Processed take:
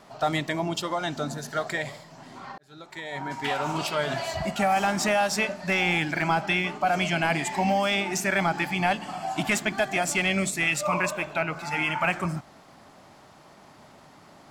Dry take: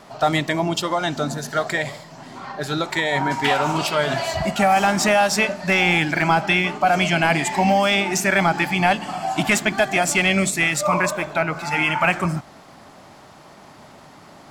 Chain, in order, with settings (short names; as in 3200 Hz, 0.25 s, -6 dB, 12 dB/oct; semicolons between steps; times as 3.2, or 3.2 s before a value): 2.58–3.81 fade in; 10.67–11.55 bell 2700 Hz +8 dB 0.31 oct; gain -6.5 dB